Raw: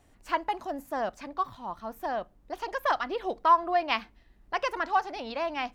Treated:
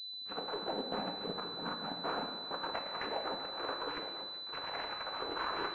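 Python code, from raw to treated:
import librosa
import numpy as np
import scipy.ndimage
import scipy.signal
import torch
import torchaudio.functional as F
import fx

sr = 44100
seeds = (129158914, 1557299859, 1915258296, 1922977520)

p1 = fx.pitch_glide(x, sr, semitones=11.0, runs='starting unshifted')
p2 = fx.peak_eq(p1, sr, hz=240.0, db=8.5, octaves=0.94)
p3 = fx.over_compress(p2, sr, threshold_db=-31.0, ratio=-0.5)
p4 = fx.tube_stage(p3, sr, drive_db=28.0, bias=0.35)
p5 = fx.quant_dither(p4, sr, seeds[0], bits=8, dither='none')
p6 = fx.noise_vocoder(p5, sr, seeds[1], bands=8)
p7 = fx.power_curve(p6, sr, exponent=1.4)
p8 = p7 + fx.echo_multitap(p7, sr, ms=(227, 384, 893), db=(-17.5, -16.5, -11.0), dry=0)
p9 = fx.rev_gated(p8, sr, seeds[2], gate_ms=360, shape='falling', drr_db=3.0)
y = fx.pwm(p9, sr, carrier_hz=4000.0)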